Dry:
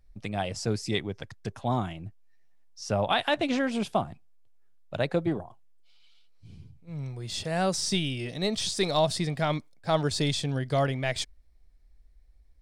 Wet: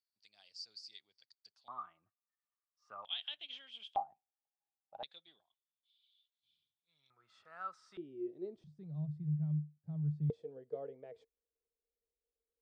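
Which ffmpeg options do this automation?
ffmpeg -i in.wav -af "asetnsamples=nb_out_samples=441:pad=0,asendcmd='1.68 bandpass f 1200;3.05 bandpass f 3200;3.96 bandpass f 800;5.03 bandpass f 3500;7.1 bandpass f 1300;7.97 bandpass f 360;8.64 bandpass f 150;10.3 bandpass f 460',bandpass=frequency=4600:width_type=q:width=18:csg=0" out.wav

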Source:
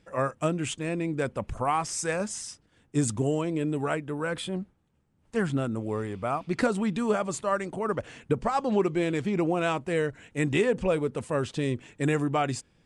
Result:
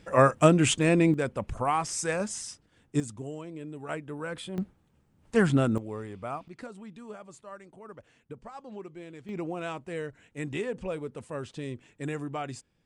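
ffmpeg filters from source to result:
ffmpeg -i in.wav -af "asetnsamples=nb_out_samples=441:pad=0,asendcmd='1.14 volume volume -0.5dB;3 volume volume -12dB;3.89 volume volume -5.5dB;4.58 volume volume 4.5dB;5.78 volume volume -6.5dB;6.48 volume volume -17.5dB;9.29 volume volume -8.5dB',volume=8dB" out.wav

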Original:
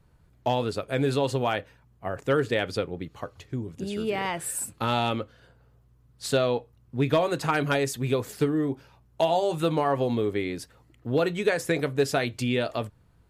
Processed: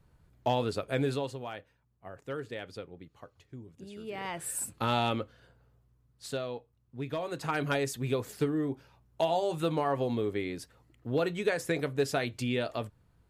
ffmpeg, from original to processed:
ffmpeg -i in.wav -af "volume=15.5dB,afade=type=out:start_time=0.94:duration=0.42:silence=0.281838,afade=type=in:start_time=4.03:duration=0.6:silence=0.281838,afade=type=out:start_time=5.21:duration=1.24:silence=0.334965,afade=type=in:start_time=7.16:duration=0.52:silence=0.421697" out.wav

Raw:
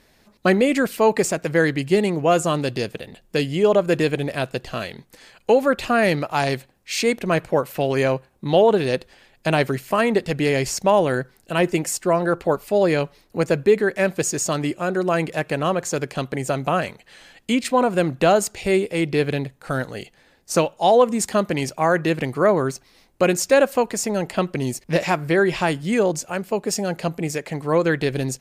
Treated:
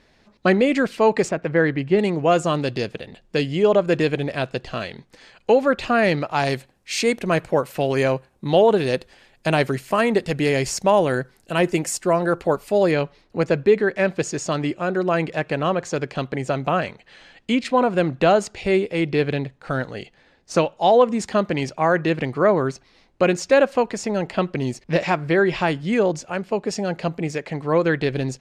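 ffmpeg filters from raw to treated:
ffmpeg -i in.wav -af "asetnsamples=nb_out_samples=441:pad=0,asendcmd='1.29 lowpass f 2400;1.99 lowpass f 5800;6.45 lowpass f 11000;12.91 lowpass f 4800',lowpass=5300" out.wav

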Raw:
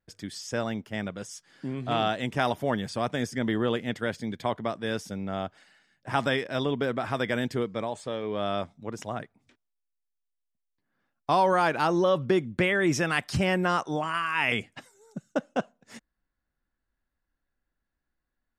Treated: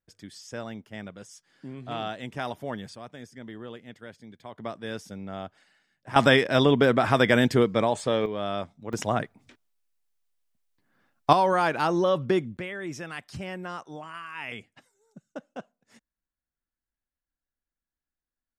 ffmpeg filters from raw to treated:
ffmpeg -i in.wav -af "asetnsamples=nb_out_samples=441:pad=0,asendcmd='2.95 volume volume -14dB;4.58 volume volume -4.5dB;6.16 volume volume 8dB;8.26 volume volume -1dB;8.93 volume volume 8dB;11.33 volume volume 0dB;12.57 volume volume -11dB',volume=-6.5dB" out.wav

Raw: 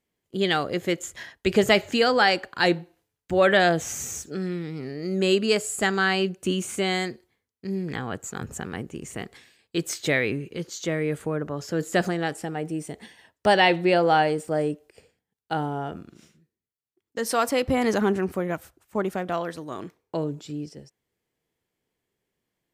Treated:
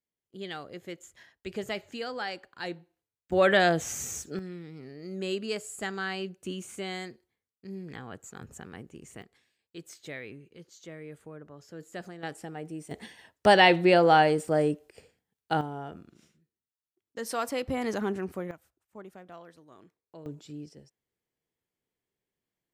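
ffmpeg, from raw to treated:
ffmpeg -i in.wav -af "asetnsamples=nb_out_samples=441:pad=0,asendcmd='3.32 volume volume -3dB;4.39 volume volume -11dB;9.22 volume volume -17.5dB;12.23 volume volume -9dB;12.91 volume volume 0dB;15.61 volume volume -8dB;18.51 volume volume -19.5dB;20.26 volume volume -8.5dB',volume=-15.5dB" out.wav

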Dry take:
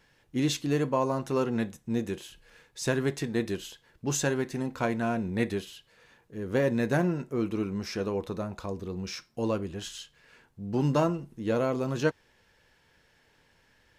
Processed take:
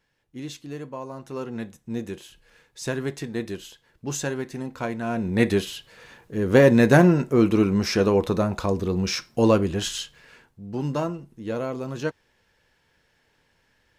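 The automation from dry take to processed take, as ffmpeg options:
ffmpeg -i in.wav -af "volume=11dB,afade=type=in:start_time=1.09:duration=0.93:silence=0.398107,afade=type=in:start_time=5.04:duration=0.62:silence=0.266073,afade=type=out:start_time=9.98:duration=0.63:silence=0.237137" out.wav

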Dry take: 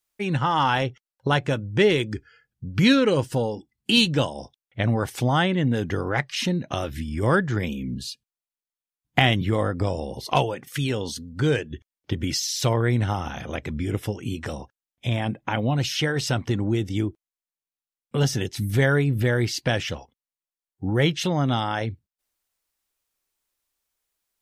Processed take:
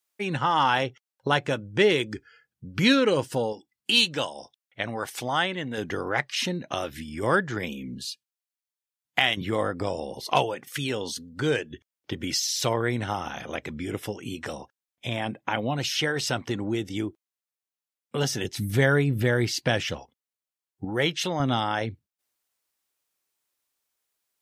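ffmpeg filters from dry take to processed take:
ffmpeg -i in.wav -af "asetnsamples=nb_out_samples=441:pad=0,asendcmd='3.53 highpass f 800;5.78 highpass f 360;8.05 highpass f 1200;9.37 highpass f 320;18.44 highpass f 120;20.85 highpass f 450;21.4 highpass f 160',highpass=frequency=280:poles=1" out.wav

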